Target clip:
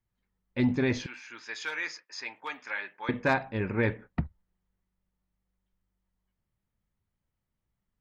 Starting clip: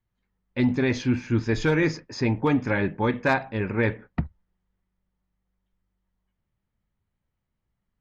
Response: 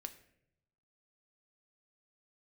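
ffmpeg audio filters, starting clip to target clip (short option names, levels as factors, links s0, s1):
-filter_complex "[0:a]asettb=1/sr,asplit=3[s0][s1][s2];[s0]atrim=end=1.064[s3];[s1]atrim=start=1.06:end=3.09,asetpts=PTS-STARTPTS,afade=t=in:d=0.004:c=qsin,afade=t=out:st=2.026:d=0.004:c=qsin,highpass=1300[s4];[s2]atrim=start=3.086[s5];[s3][s4]acrossfade=d=0.004:c1=hsin:c2=qsin[s6];[s6][s5]acrossfade=d=0.004:c1=qsin:c2=hsin,volume=0.668"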